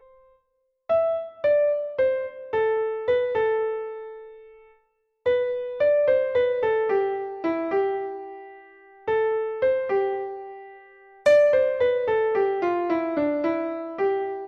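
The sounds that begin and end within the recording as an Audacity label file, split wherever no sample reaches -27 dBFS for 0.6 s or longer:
0.900000	3.850000	sound
5.260000	8.150000	sound
9.080000	10.320000	sound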